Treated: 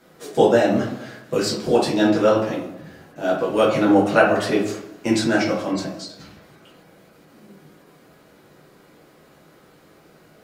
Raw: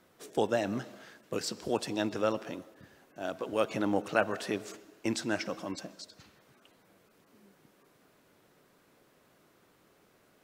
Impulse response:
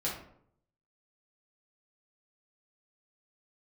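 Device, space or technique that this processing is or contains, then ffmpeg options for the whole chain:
bathroom: -filter_complex "[1:a]atrim=start_sample=2205[s0];[0:a][s0]afir=irnorm=-1:irlink=0,volume=2.37"

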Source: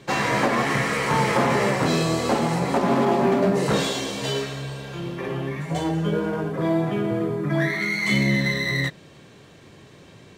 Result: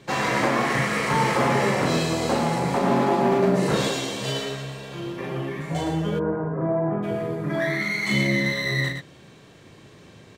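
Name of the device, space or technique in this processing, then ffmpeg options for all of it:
slapback doubling: -filter_complex "[0:a]asplit=3[s0][s1][s2];[s1]adelay=38,volume=0.562[s3];[s2]adelay=114,volume=0.501[s4];[s0][s3][s4]amix=inputs=3:normalize=0,asplit=3[s5][s6][s7];[s5]afade=t=out:st=6.18:d=0.02[s8];[s6]lowpass=f=1500:w=0.5412,lowpass=f=1500:w=1.3066,afade=t=in:st=6.18:d=0.02,afade=t=out:st=7.02:d=0.02[s9];[s7]afade=t=in:st=7.02:d=0.02[s10];[s8][s9][s10]amix=inputs=3:normalize=0,volume=0.75"

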